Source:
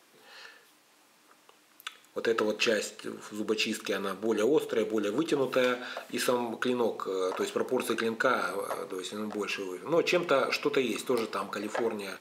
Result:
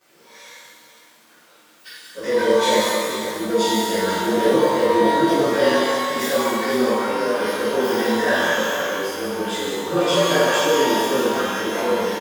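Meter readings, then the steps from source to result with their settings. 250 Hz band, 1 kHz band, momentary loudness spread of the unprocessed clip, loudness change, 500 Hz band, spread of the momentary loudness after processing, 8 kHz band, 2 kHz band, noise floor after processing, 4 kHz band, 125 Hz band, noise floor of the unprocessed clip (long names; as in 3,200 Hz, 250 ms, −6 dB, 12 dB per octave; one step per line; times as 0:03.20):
+10.0 dB, +13.5 dB, 11 LU, +10.5 dB, +10.0 dB, 8 LU, +12.0 dB, +10.5 dB, −52 dBFS, +11.5 dB, +11.5 dB, −62 dBFS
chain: partials spread apart or drawn together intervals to 111%
multi-tap delay 182/491 ms −7.5/−10 dB
reverb with rising layers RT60 1.2 s, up +12 semitones, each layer −8 dB, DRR −11.5 dB
level −1 dB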